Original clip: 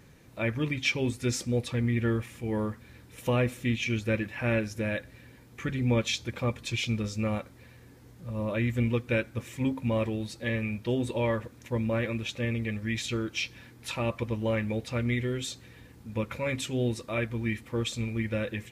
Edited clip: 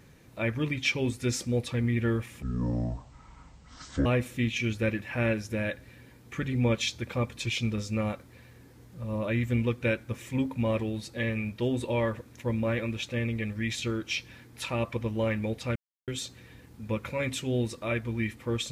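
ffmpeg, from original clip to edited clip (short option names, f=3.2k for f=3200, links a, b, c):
-filter_complex "[0:a]asplit=5[a][b][c][d][e];[a]atrim=end=2.424[f];[b]atrim=start=2.42:end=3.32,asetpts=PTS-STARTPTS,asetrate=24255,aresample=44100[g];[c]atrim=start=3.316:end=15.02,asetpts=PTS-STARTPTS,afade=t=out:st=11.7:d=0.004:c=hsin[h];[d]atrim=start=15.02:end=15.34,asetpts=PTS-STARTPTS,volume=0[i];[e]atrim=start=15.34,asetpts=PTS-STARTPTS,afade=t=in:d=0.004:c=hsin[j];[f][g]acrossfade=d=0.004:c1=hsin:c2=hsin[k];[h][i][j]concat=n=3:v=0:a=1[l];[k][l]acrossfade=d=0.004:c1=hsin:c2=hsin"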